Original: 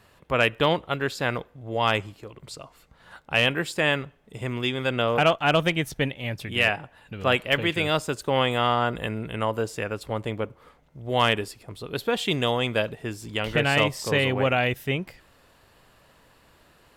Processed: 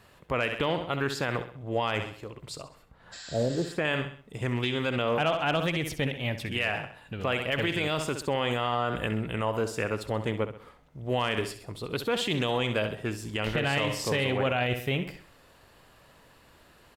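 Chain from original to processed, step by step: 2.61–3.85 s: treble shelf 2.5 kHz -10.5 dB; feedback delay 65 ms, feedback 42%, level -12 dB; 3.15–3.67 s: spectral replace 690–8000 Hz after; peak limiter -17.5 dBFS, peak gain reduction 9 dB; loudspeaker Doppler distortion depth 0.15 ms

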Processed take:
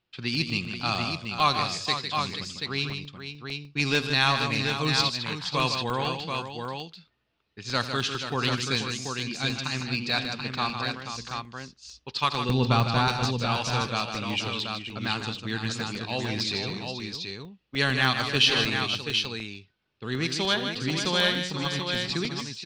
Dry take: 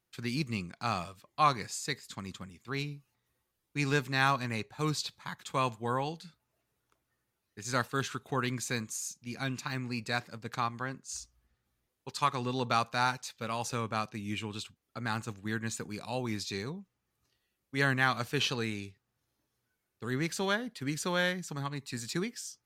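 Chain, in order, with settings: 12.49–13.08 s: RIAA curve playback; level-controlled noise filter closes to 2.8 kHz, open at -24.5 dBFS; high-order bell 3.7 kHz +9.5 dB 1.3 oct; in parallel at -11 dB: saturation -24.5 dBFS, distortion -9 dB; on the sum: brick-wall FIR low-pass 12 kHz; on a send: multi-tap echo 84/154/480/733 ms -15.5/-7.5/-9.5/-5.5 dB; on the sum: crackling interface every 0.15 s, samples 64, zero, from 0.35 s; trim +1 dB

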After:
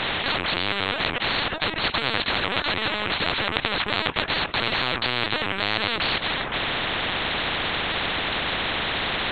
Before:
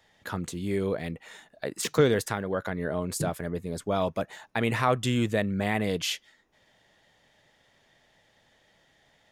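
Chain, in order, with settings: high-pass 240 Hz 6 dB/octave; in parallel at 0 dB: compression 12:1, threshold -41 dBFS, peak gain reduction 23.5 dB; on the sum: overdrive pedal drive 31 dB, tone 2.5 kHz, clips at -9 dBFS; LPC vocoder at 8 kHz pitch kept; spectrum-flattening compressor 10:1

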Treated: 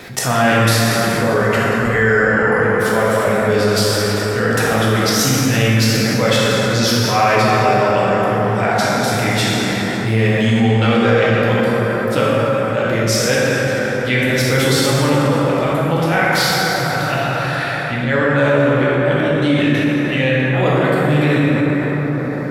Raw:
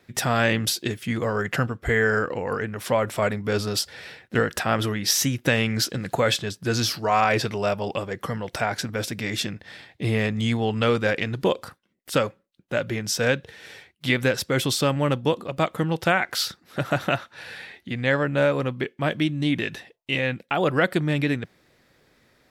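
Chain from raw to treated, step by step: 10.03–10.44 s: median filter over 3 samples; slow attack 109 ms; plate-style reverb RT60 4.6 s, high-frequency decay 0.4×, DRR -8 dB; level flattener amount 50%; trim -1 dB

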